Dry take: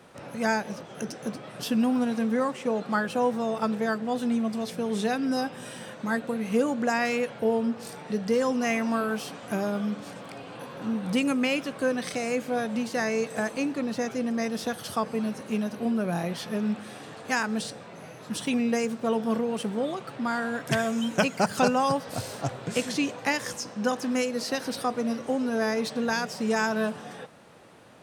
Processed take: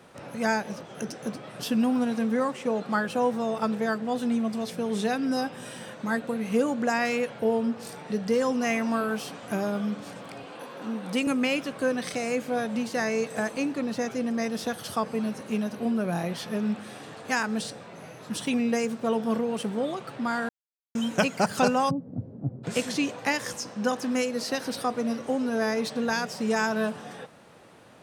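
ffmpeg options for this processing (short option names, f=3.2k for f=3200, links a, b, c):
-filter_complex "[0:a]asettb=1/sr,asplit=3[a][b][c];[a]atrim=end=10.464[d];[b]atrim=start=10.46:end=11.27,asetpts=PTS-STARTPTS,afade=t=in:d=0.004:c=qsin,afade=t=out:st=0.806:d=0.004:c=qsin,highpass=240[e];[c]atrim=start=11.266[f];[d][e]acrossfade=d=0.004:c1=hsin:c2=qsin[g];[g][f]acrossfade=d=0.004:c1=qsin:c2=hsin,asplit=3[h][i][j];[h]afade=t=out:st=21.89:d=0.02[k];[i]lowpass=f=240:t=q:w=1.7,afade=t=in:st=21.89:d=0.02,afade=t=out:st=22.63:d=0.02[l];[j]afade=t=in:st=22.63:d=0.02[m];[k][l][m]amix=inputs=3:normalize=0,asplit=3[n][o][p];[n]atrim=end=20.49,asetpts=PTS-STARTPTS,afade=t=out:st=20.486:d=0.004:c=hsin[q];[o]atrim=start=20.49:end=20.95,asetpts=PTS-STARTPTS,volume=0[r];[p]atrim=start=20.95,asetpts=PTS-STARTPTS,afade=t=in:d=0.004:c=hsin[s];[q][r][s]concat=n=3:v=0:a=1"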